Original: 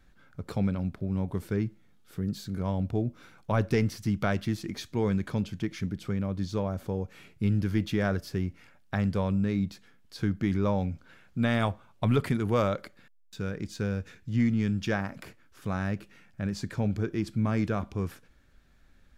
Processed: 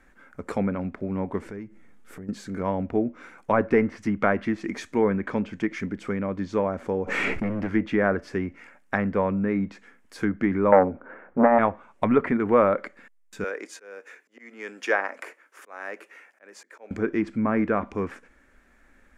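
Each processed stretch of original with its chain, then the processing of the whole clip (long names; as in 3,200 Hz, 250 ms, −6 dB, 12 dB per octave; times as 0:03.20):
0:01.46–0:02.29: low-shelf EQ 140 Hz +10.5 dB + downward compressor 4 to 1, threshold −38 dBFS
0:07.04–0:07.71: hard clipping −24 dBFS + background raised ahead of every attack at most 23 dB per second
0:10.72–0:11.59: drawn EQ curve 120 Hz 0 dB, 550 Hz +12 dB, 1,500 Hz +4 dB, 5,200 Hz −25 dB + saturating transformer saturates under 800 Hz
0:13.44–0:16.91: notch filter 7,900 Hz, Q 26 + volume swells 441 ms + high-pass filter 390 Hz 24 dB per octave
whole clip: treble cut that deepens with the level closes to 1,800 Hz, closed at −22.5 dBFS; octave-band graphic EQ 125/250/500/1,000/2,000/4,000/8,000 Hz −12/+8/+6/+6/+11/−8/+7 dB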